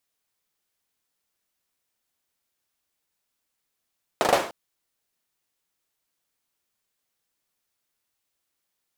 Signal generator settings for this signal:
synth clap length 0.30 s, apart 39 ms, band 590 Hz, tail 0.44 s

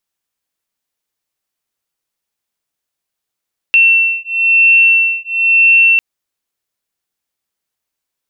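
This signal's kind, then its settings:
two tones that beat 2,700 Hz, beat 1 Hz, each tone −10.5 dBFS 2.25 s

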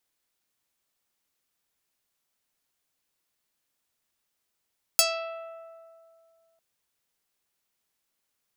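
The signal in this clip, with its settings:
Karplus-Strong string E5, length 1.60 s, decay 2.37 s, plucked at 0.34, medium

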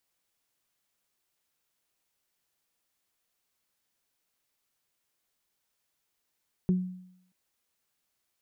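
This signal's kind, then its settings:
harmonic partials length 0.63 s, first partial 183 Hz, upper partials −10 dB, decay 0.73 s, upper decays 0.21 s, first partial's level −19.5 dB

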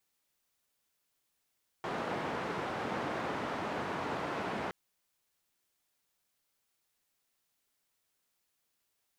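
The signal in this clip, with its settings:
band-limited noise 130–1,100 Hz, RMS −36.5 dBFS 2.87 s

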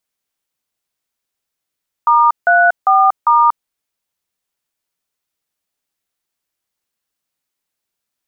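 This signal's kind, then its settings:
touch tones "*34*", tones 237 ms, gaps 162 ms, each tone −10 dBFS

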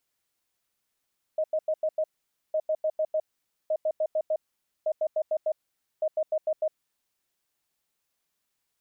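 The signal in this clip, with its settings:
beeps in groups sine 625 Hz, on 0.06 s, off 0.09 s, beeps 5, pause 0.50 s, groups 5, −22.5 dBFS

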